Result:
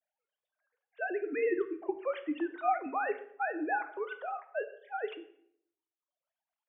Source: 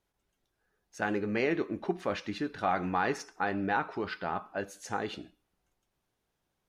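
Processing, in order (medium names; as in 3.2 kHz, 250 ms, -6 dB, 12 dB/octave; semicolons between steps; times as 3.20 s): formants replaced by sine waves; reverb removal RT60 1.2 s; reverberation RT60 0.65 s, pre-delay 6 ms, DRR 9 dB; trim -2 dB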